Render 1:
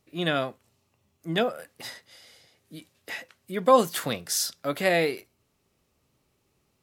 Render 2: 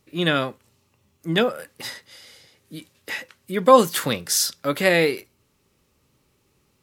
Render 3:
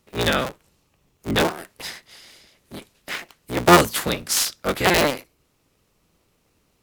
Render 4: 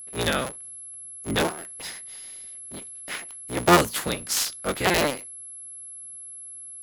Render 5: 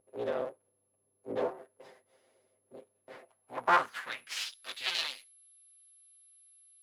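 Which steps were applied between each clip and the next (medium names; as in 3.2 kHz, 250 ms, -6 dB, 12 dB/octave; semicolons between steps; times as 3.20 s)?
peaking EQ 690 Hz -9.5 dB 0.22 oct; trim +6 dB
cycle switcher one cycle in 3, inverted
whistle 11 kHz -34 dBFS; trim -4 dB
comb filter that takes the minimum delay 7.7 ms; band-pass sweep 510 Hz -> 3.7 kHz, 3.17–4.62 s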